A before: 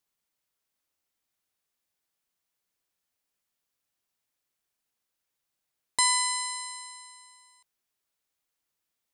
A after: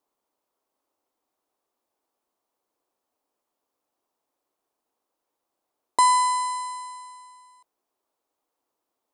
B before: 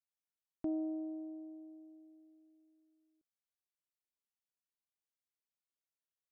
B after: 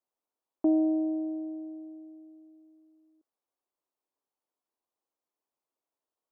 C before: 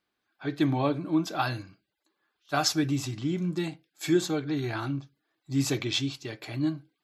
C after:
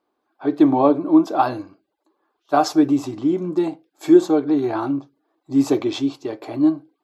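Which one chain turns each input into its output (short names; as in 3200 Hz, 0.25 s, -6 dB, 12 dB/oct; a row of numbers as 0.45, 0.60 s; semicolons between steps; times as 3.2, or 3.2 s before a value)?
band shelf 540 Hz +15.5 dB 2.6 oct; gain -3 dB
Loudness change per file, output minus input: +4.0, +12.0, +10.0 LU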